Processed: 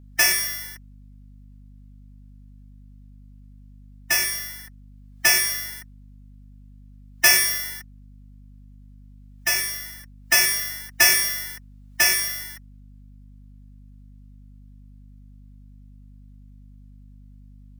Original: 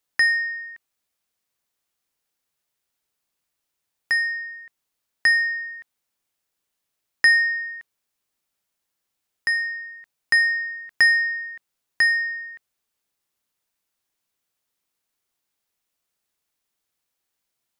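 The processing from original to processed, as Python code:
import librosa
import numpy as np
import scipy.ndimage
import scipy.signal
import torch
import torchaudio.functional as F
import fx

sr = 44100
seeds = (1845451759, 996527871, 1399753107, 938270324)

y = fx.halfwave_hold(x, sr)
y = fx.pitch_keep_formants(y, sr, semitones=10.5)
y = fx.add_hum(y, sr, base_hz=50, snr_db=19)
y = y * 10.0 ** (-3.0 / 20.0)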